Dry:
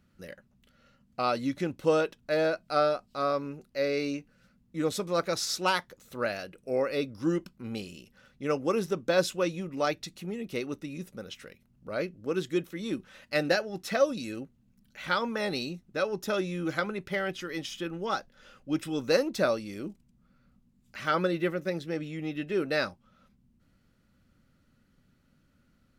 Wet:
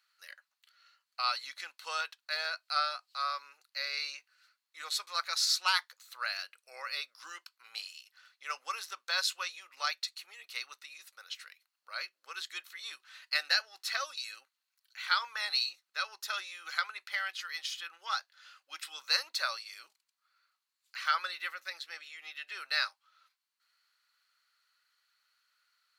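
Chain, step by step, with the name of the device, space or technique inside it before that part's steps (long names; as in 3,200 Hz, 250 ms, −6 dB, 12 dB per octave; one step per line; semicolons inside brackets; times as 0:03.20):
headphones lying on a table (high-pass filter 1,100 Hz 24 dB per octave; parametric band 4,300 Hz +11 dB 0.22 octaves)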